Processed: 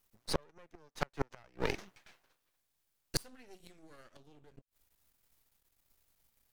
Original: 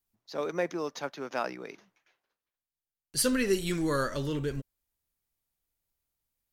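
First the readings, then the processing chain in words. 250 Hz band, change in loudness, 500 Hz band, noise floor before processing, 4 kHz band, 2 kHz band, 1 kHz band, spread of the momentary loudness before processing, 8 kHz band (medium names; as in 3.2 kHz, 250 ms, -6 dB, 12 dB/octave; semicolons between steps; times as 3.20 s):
-14.5 dB, -8.5 dB, -11.5 dB, under -85 dBFS, -6.0 dB, -9.0 dB, -8.0 dB, 12 LU, -11.5 dB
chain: half-wave rectifier; inverted gate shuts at -28 dBFS, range -38 dB; trim +13.5 dB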